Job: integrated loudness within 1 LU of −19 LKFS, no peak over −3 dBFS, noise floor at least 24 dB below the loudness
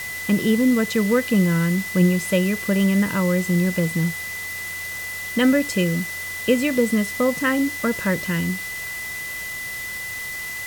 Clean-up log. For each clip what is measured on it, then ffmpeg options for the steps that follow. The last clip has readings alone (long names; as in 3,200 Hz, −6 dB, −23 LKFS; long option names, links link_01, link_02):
interfering tone 2,000 Hz; level of the tone −29 dBFS; background noise floor −31 dBFS; target noise floor −46 dBFS; integrated loudness −21.5 LKFS; sample peak −6.5 dBFS; target loudness −19.0 LKFS
→ -af "bandreject=frequency=2000:width=30"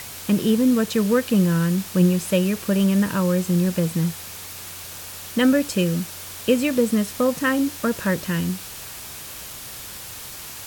interfering tone none found; background noise floor −37 dBFS; target noise floor −45 dBFS
→ -af "afftdn=noise_reduction=8:noise_floor=-37"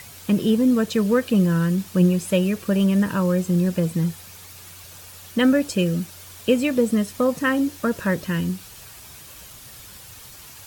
background noise floor −43 dBFS; target noise floor −46 dBFS
→ -af "afftdn=noise_reduction=6:noise_floor=-43"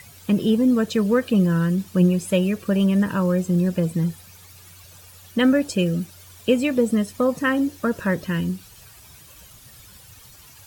background noise floor −47 dBFS; integrated loudness −21.5 LKFS; sample peak −7.0 dBFS; target loudness −19.0 LKFS
→ -af "volume=2.5dB"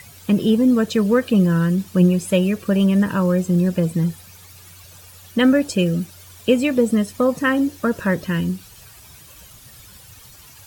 integrated loudness −19.0 LKFS; sample peak −4.5 dBFS; background noise floor −45 dBFS